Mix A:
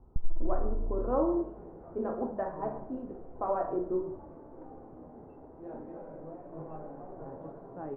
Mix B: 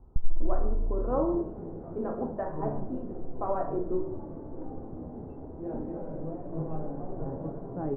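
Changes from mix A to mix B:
second sound: add low shelf 480 Hz +11.5 dB; master: add low shelf 120 Hz +4.5 dB

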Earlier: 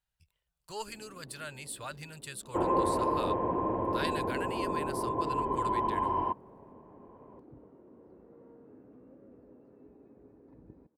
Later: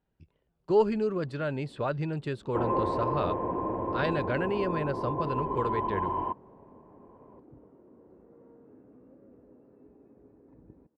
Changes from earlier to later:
speech: remove passive tone stack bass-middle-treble 10-0-10; master: add air absorption 180 m

